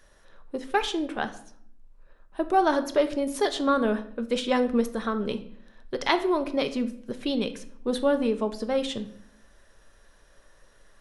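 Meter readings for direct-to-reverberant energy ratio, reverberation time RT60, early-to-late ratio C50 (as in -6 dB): 9.0 dB, 0.65 s, 14.0 dB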